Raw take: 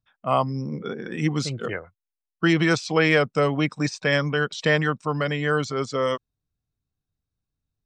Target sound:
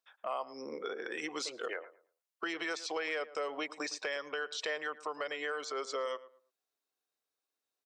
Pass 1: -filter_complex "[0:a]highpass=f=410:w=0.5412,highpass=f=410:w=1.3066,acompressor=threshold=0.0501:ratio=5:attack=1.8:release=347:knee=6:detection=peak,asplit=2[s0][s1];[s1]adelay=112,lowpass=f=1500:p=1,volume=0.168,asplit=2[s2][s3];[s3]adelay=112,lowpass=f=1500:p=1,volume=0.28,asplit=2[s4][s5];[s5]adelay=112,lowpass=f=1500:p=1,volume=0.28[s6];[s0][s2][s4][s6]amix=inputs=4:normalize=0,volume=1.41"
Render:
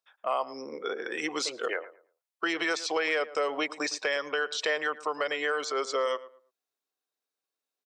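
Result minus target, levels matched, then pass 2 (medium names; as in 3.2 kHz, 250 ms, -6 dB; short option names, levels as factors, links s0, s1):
compression: peak gain reduction -8 dB
-filter_complex "[0:a]highpass=f=410:w=0.5412,highpass=f=410:w=1.3066,acompressor=threshold=0.0158:ratio=5:attack=1.8:release=347:knee=6:detection=peak,asplit=2[s0][s1];[s1]adelay=112,lowpass=f=1500:p=1,volume=0.168,asplit=2[s2][s3];[s3]adelay=112,lowpass=f=1500:p=1,volume=0.28,asplit=2[s4][s5];[s5]adelay=112,lowpass=f=1500:p=1,volume=0.28[s6];[s0][s2][s4][s6]amix=inputs=4:normalize=0,volume=1.41"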